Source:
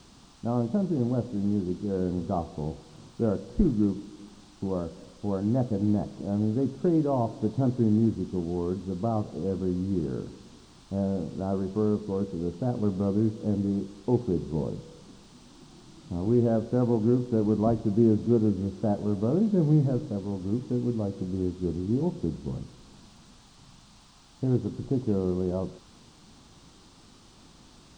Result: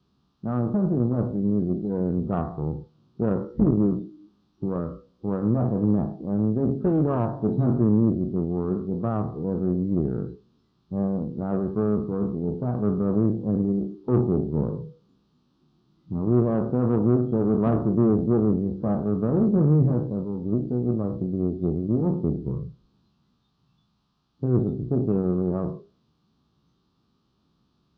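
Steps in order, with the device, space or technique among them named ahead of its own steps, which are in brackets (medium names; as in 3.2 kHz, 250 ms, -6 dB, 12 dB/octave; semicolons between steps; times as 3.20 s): spectral sustain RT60 0.73 s; spectral noise reduction 17 dB; guitar amplifier (valve stage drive 19 dB, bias 0.8; tone controls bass +12 dB, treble +5 dB; cabinet simulation 78–4500 Hz, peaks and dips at 96 Hz -9 dB, 400 Hz +5 dB, 1.2 kHz +7 dB, 2.1 kHz -6 dB)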